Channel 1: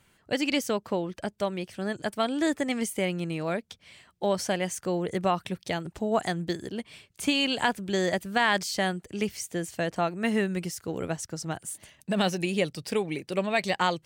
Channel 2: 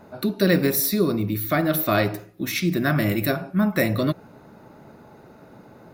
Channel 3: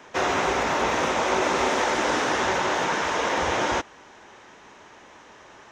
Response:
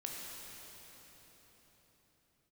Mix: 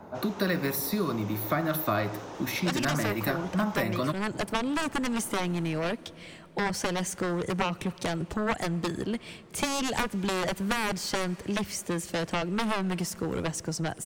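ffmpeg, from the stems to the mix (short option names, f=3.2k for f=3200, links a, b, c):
-filter_complex "[0:a]aeval=exprs='0.316*(cos(1*acos(clip(val(0)/0.316,-1,1)))-cos(1*PI/2))+0.126*(cos(7*acos(clip(val(0)/0.316,-1,1)))-cos(7*PI/2))':c=same,adelay=2350,volume=0dB,asplit=2[a][b];[b]volume=-20dB[c];[1:a]equalizer=f=980:w=1.5:g=6.5,volume=-3dB[d];[2:a]equalizer=f=1.9k:w=1.3:g=-9,volume=21.5dB,asoftclip=hard,volume=-21.5dB,volume=-16dB[e];[3:a]atrim=start_sample=2205[f];[c][f]afir=irnorm=-1:irlink=0[g];[a][d][e][g]amix=inputs=4:normalize=0,tiltshelf=f=1.4k:g=3,acrossover=split=180|890[h][i][j];[h]acompressor=threshold=-35dB:ratio=4[k];[i]acompressor=threshold=-31dB:ratio=4[l];[j]acompressor=threshold=-29dB:ratio=4[m];[k][l][m]amix=inputs=3:normalize=0"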